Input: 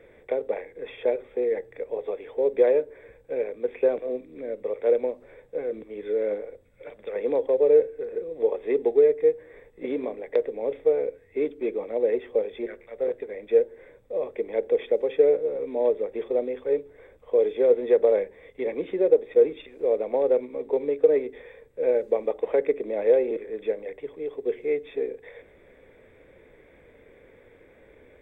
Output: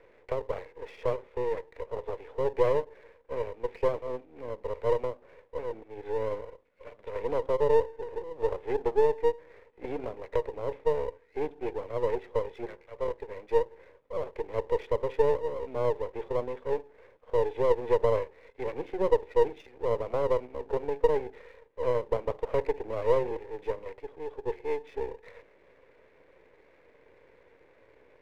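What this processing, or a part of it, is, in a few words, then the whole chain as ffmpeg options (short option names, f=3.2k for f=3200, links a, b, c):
crystal radio: -af "highpass=320,lowpass=2.6k,aeval=exprs='if(lt(val(0),0),0.251*val(0),val(0))':c=same,volume=-1dB"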